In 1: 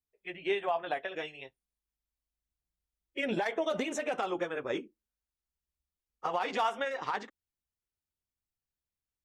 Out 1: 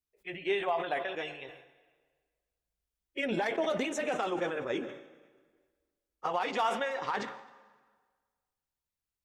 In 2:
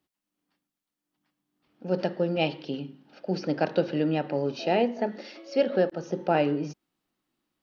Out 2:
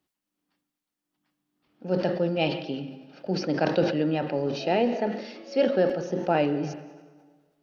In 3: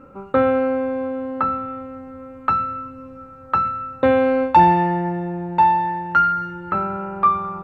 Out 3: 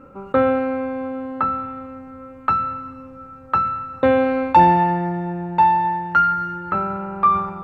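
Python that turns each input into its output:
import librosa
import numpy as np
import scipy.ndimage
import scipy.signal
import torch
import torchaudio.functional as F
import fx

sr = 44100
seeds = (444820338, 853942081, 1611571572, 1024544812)

y = fx.rev_plate(x, sr, seeds[0], rt60_s=1.6, hf_ratio=0.85, predelay_ms=115, drr_db=15.5)
y = fx.sustainer(y, sr, db_per_s=75.0)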